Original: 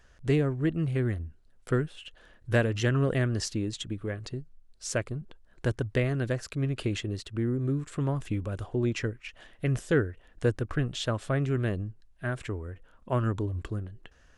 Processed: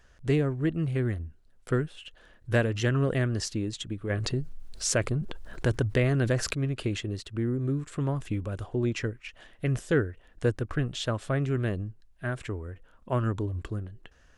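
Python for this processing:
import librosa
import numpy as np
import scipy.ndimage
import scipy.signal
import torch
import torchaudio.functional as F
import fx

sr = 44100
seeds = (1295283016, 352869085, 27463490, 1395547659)

y = fx.env_flatten(x, sr, amount_pct=50, at=(4.09, 6.53), fade=0.02)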